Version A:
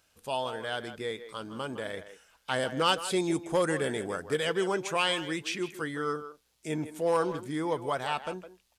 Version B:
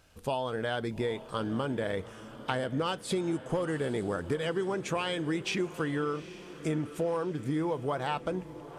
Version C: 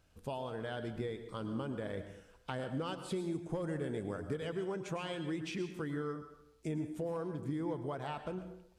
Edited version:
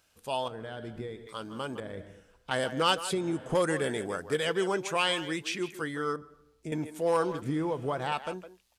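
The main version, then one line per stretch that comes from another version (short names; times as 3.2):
A
0.48–1.27 from C
1.8–2.51 from C
3.13–3.55 from B
6.16–6.72 from C
7.42–8.12 from B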